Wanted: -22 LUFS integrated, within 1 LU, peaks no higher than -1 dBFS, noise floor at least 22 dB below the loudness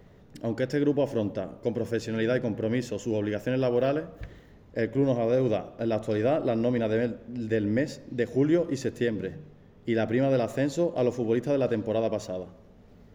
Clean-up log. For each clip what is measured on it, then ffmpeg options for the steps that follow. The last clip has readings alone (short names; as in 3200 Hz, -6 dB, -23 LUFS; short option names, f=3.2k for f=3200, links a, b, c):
loudness -28.0 LUFS; peak -13.0 dBFS; loudness target -22.0 LUFS
-> -af "volume=6dB"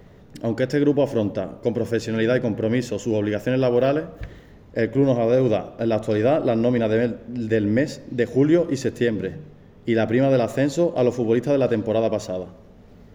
loudness -22.0 LUFS; peak -7.0 dBFS; noise floor -47 dBFS